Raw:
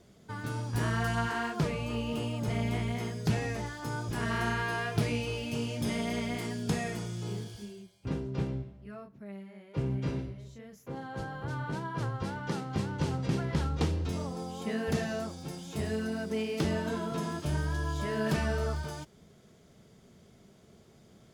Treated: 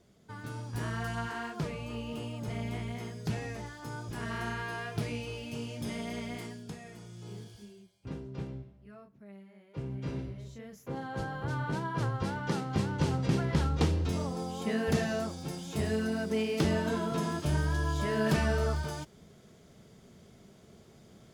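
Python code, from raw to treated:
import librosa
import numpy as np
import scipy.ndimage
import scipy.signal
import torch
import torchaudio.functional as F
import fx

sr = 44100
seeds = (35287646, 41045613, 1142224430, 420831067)

y = fx.gain(x, sr, db=fx.line((6.42, -5.0), (6.78, -14.5), (7.42, -6.5), (9.92, -6.5), (10.41, 2.0)))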